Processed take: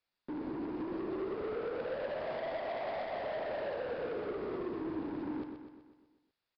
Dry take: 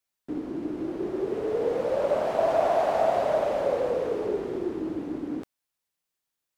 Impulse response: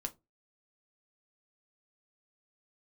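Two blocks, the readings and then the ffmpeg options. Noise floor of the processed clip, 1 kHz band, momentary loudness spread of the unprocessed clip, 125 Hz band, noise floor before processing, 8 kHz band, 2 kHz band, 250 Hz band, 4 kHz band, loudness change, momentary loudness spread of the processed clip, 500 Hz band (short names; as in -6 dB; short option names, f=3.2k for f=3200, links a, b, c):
under -85 dBFS, -12.5 dB, 10 LU, -8.0 dB, -85 dBFS, n/a, -4.5 dB, -7.0 dB, -6.5 dB, -11.0 dB, 4 LU, -12.0 dB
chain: -filter_complex "[0:a]bandreject=f=3.1k:w=16,acompressor=threshold=-30dB:ratio=6,asoftclip=type=tanh:threshold=-37dB,asplit=2[a][b];[b]aecho=0:1:125|250|375|500|625|750|875:0.447|0.246|0.135|0.0743|0.0409|0.0225|0.0124[c];[a][c]amix=inputs=2:normalize=0,aresample=11025,aresample=44100,volume=1dB"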